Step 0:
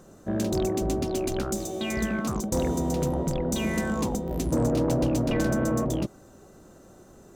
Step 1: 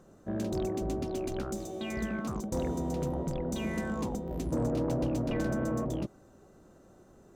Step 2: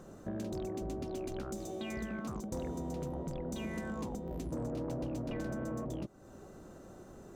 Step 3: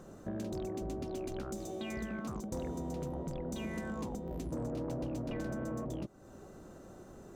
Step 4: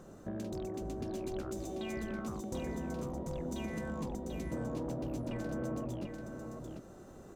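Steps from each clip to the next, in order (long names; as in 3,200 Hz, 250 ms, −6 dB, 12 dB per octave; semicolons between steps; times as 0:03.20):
high-shelf EQ 3,900 Hz −7 dB; level −6 dB
downward compressor 3 to 1, threshold −46 dBFS, peak gain reduction 14 dB; level +5.5 dB
no processing that can be heard
single-tap delay 740 ms −5.5 dB; level −1 dB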